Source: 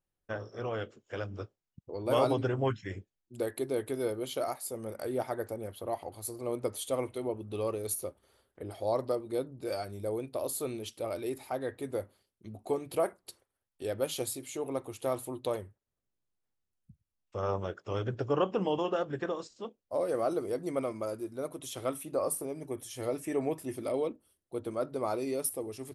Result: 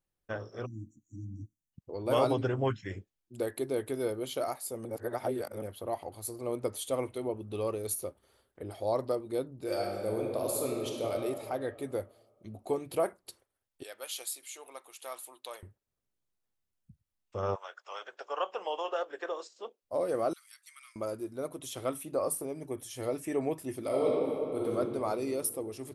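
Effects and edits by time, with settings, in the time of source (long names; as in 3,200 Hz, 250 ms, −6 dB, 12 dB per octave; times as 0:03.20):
0:00.66–0:01.72: time-frequency box erased 330–5,700 Hz
0:04.85–0:05.62: reverse
0:09.63–0:11.12: thrown reverb, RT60 2.2 s, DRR 0 dB
0:13.83–0:15.63: Bessel high-pass filter 1,400 Hz
0:17.54–0:19.81: high-pass filter 830 Hz → 360 Hz 24 dB per octave
0:20.33–0:20.96: Bessel high-pass filter 2,500 Hz, order 8
0:23.86–0:24.72: thrown reverb, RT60 2.8 s, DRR −4.5 dB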